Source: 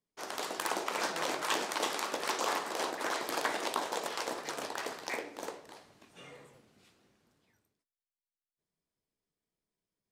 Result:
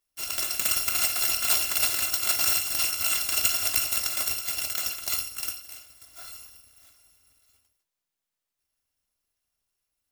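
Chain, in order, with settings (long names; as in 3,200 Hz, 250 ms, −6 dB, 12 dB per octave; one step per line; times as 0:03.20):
samples in bit-reversed order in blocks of 256 samples
level +9 dB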